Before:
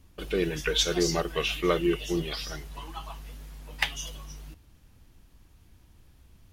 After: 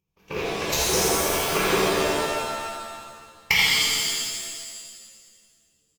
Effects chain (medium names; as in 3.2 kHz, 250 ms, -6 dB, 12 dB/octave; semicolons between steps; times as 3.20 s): upward compressor, threshold -41 dBFS; Chebyshev shaper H 2 -7 dB, 6 -19 dB, 7 -17 dB, 8 -20 dB, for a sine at -7.5 dBFS; whisper effect; tape speed +9%; rippled EQ curve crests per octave 0.78, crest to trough 12 dB; on a send: delay 83 ms -4 dB; on the sum: pitch-shifted reverb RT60 1.8 s, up +7 st, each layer -2 dB, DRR -6.5 dB; trim -1.5 dB